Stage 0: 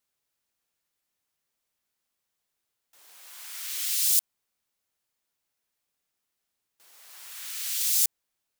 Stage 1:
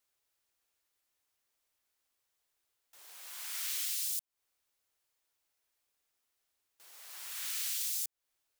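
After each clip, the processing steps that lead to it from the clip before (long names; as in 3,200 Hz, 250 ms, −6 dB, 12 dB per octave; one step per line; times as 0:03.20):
parametric band 180 Hz −12.5 dB 0.69 octaves
downward compressor 16 to 1, threshold −32 dBFS, peak gain reduction 15.5 dB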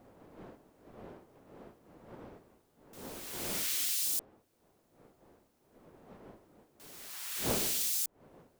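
one-sided soft clipper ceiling −22.5 dBFS
wind on the microphone 400 Hz −48 dBFS
low-shelf EQ 200 Hz −11.5 dB
level +3.5 dB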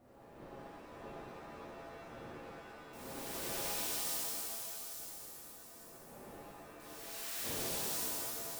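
downward compressor 5 to 1, threshold −38 dBFS, peak gain reduction 10 dB
delay with a high-pass on its return 851 ms, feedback 31%, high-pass 3,700 Hz, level −9.5 dB
reverb with rising layers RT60 2.6 s, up +7 semitones, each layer −2 dB, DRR −7.5 dB
level −7 dB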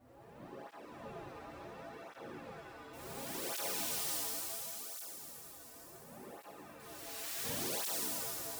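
through-zero flanger with one copy inverted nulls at 0.7 Hz, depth 5.8 ms
level +3.5 dB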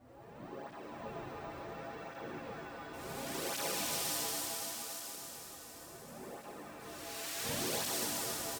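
repeating echo 279 ms, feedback 56%, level −7 dB
bad sample-rate conversion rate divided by 2×, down filtered, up hold
level +3 dB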